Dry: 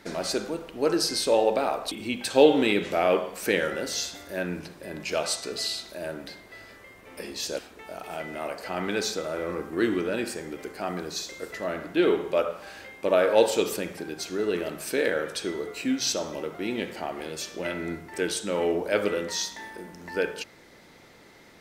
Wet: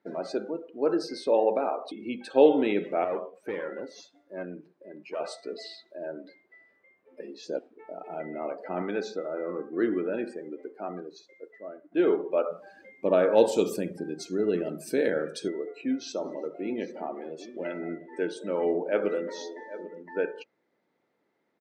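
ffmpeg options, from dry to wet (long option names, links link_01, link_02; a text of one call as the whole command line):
ffmpeg -i in.wav -filter_complex "[0:a]asettb=1/sr,asplit=3[link_01][link_02][link_03];[link_01]atrim=end=3.044[link_04];[link_02]atrim=start=3.04:end=5.2,asetpts=PTS-STARTPTS,afade=type=in:duration=0.004:curve=qsin,afade=type=out:start_time=2.156:duration=0.004:curve=qsin,aeval=exprs='(tanh(15.8*val(0)+0.7)-tanh(0.7))/15.8':channel_layout=same[link_05];[link_03]atrim=start=5.196[link_06];[link_04][link_05]acrossfade=duration=0.004:curve1=hsin:curve2=qsin[link_07];[link_07][link_06]acrossfade=duration=0.004:curve1=qsin:curve2=hsin,asettb=1/sr,asplit=3[link_08][link_09][link_10];[link_08]atrim=end=7.474[link_11];[link_09]atrim=start=7.47:end=8.82,asetpts=PTS-STARTPTS,afade=type=in:duration=0.004:curve=qsin,afade=type=out:start_time=1.346:duration=0.004:curve=qsin,lowshelf=frequency=330:gain=7[link_12];[link_10]atrim=start=8.816[link_13];[link_11][link_12]acrossfade=duration=0.004:curve1=hsin:curve2=qsin[link_14];[link_14][link_13]acrossfade=duration=0.004:curve1=qsin:curve2=hsin,asettb=1/sr,asplit=3[link_15][link_16][link_17];[link_15]atrim=end=12.514[link_18];[link_16]atrim=start=12.51:end=15.48,asetpts=PTS-STARTPTS,afade=type=in:duration=0.004:curve=qsin,afade=type=out:start_time=2.966:duration=0.004:curve=qsin,bass=frequency=250:gain=11,treble=frequency=4000:gain=12[link_19];[link_17]atrim=start=15.476[link_20];[link_18][link_19]acrossfade=duration=0.004:curve1=hsin:curve2=qsin[link_21];[link_21][link_20]acrossfade=duration=0.004:curve1=qsin:curve2=hsin,asplit=3[link_22][link_23][link_24];[link_22]afade=type=out:start_time=16.22:duration=0.02[link_25];[link_23]aecho=1:1:212|351|793:0.106|0.106|0.2,afade=type=in:start_time=16.22:duration=0.02,afade=type=out:start_time=20.02:duration=0.02[link_26];[link_24]afade=type=in:start_time=20.02:duration=0.02[link_27];[link_25][link_26][link_27]amix=inputs=3:normalize=0,asplit=2[link_28][link_29];[link_28]atrim=end=11.92,asetpts=PTS-STARTPTS,afade=type=out:start_time=10.49:duration=1.43:silence=0.298538[link_30];[link_29]atrim=start=11.92,asetpts=PTS-STARTPTS,afade=type=in:duration=0.004:curve=hsin:silence=0.298538[link_31];[link_30][link_31]concat=n=2:v=0:a=1,highpass=220,afftdn=noise_reduction=19:noise_floor=-36,lowpass=frequency=1000:poles=1" out.wav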